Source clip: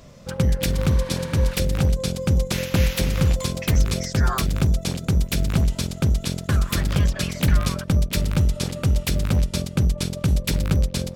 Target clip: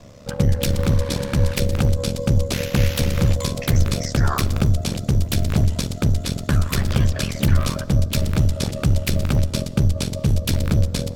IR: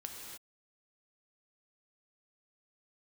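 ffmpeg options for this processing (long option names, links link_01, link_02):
-filter_complex "[0:a]aeval=exprs='val(0)*sin(2*PI*35*n/s)':channel_layout=same,acontrast=77,asplit=2[link_01][link_02];[link_02]equalizer=frequency=100:width_type=o:width=0.67:gain=6,equalizer=frequency=630:width_type=o:width=0.67:gain=8,equalizer=frequency=2500:width_type=o:width=0.67:gain=-11,equalizer=frequency=10000:width_type=o:width=0.67:gain=-11[link_03];[1:a]atrim=start_sample=2205[link_04];[link_03][link_04]afir=irnorm=-1:irlink=0,volume=-11dB[link_05];[link_01][link_05]amix=inputs=2:normalize=0,volume=-3.5dB"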